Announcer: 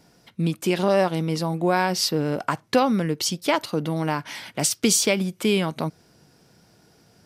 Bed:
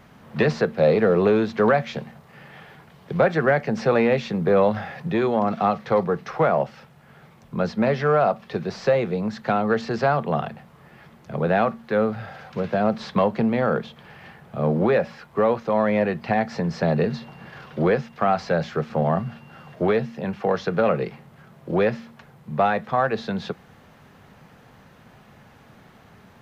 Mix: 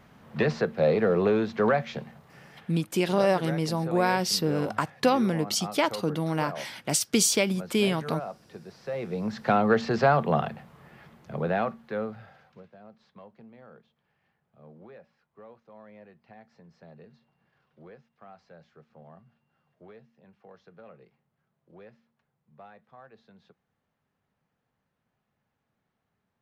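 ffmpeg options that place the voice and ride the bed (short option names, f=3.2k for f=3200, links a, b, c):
-filter_complex "[0:a]adelay=2300,volume=-3dB[a];[1:a]volume=11.5dB,afade=t=out:st=2.25:d=0.79:silence=0.251189,afade=t=in:st=8.87:d=0.67:silence=0.149624,afade=t=out:st=10.25:d=2.45:silence=0.0354813[b];[a][b]amix=inputs=2:normalize=0"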